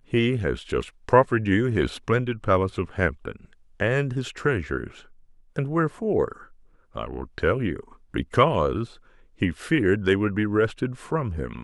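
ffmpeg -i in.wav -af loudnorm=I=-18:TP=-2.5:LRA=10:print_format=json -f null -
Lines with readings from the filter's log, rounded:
"input_i" : "-24.7",
"input_tp" : "-3.9",
"input_lra" : "4.6",
"input_thresh" : "-35.4",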